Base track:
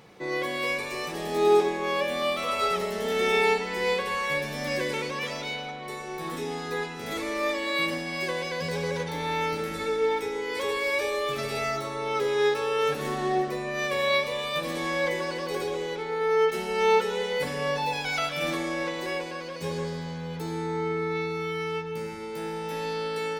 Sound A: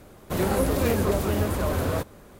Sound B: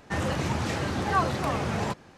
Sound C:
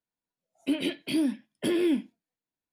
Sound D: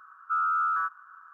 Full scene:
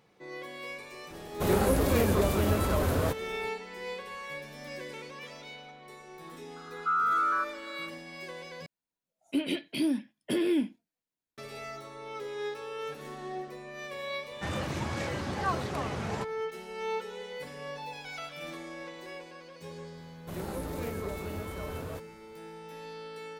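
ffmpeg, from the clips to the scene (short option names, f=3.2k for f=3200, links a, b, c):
-filter_complex "[1:a]asplit=2[a][b];[0:a]volume=-12.5dB[c];[a]acontrast=57[d];[c]asplit=2[e][f];[e]atrim=end=8.664[g];[3:a]atrim=end=2.72,asetpts=PTS-STARTPTS,volume=-2dB[h];[f]atrim=start=11.376[i];[d]atrim=end=2.39,asetpts=PTS-STARTPTS,volume=-8dB,afade=t=in:d=0.004:c=hsin,afade=t=out:st=2.386:d=0.004:c=hsin,adelay=1100[j];[4:a]atrim=end=1.33,asetpts=PTS-STARTPTS,volume=-0.5dB,afade=t=in:d=0.004:c=hsin,afade=t=out:st=1.326:d=0.004:c=hsin,adelay=6560[k];[2:a]atrim=end=2.17,asetpts=PTS-STARTPTS,volume=-6dB,afade=t=in:d=0.004:c=hsin,afade=t=out:st=2.166:d=0.004:c=hsin,adelay=14310[l];[b]atrim=end=2.39,asetpts=PTS-STARTPTS,volume=-14dB,afade=t=in:d=0.004:c=hsin,afade=t=out:st=2.386:d=0.004:c=hsin,adelay=19970[m];[g][h]acrossfade=d=0.004:c1=hsin:c2=hsin[n];[n][i]acrossfade=d=0.004:c1=hsin:c2=hsin[o];[o][j][k][l][m]amix=inputs=5:normalize=0"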